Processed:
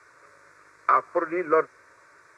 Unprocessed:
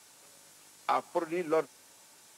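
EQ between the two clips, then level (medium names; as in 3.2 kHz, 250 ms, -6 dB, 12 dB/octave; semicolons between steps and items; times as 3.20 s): tape spacing loss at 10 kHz 24 dB; high-order bell 1.5 kHz +8.5 dB; static phaser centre 820 Hz, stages 6; +8.5 dB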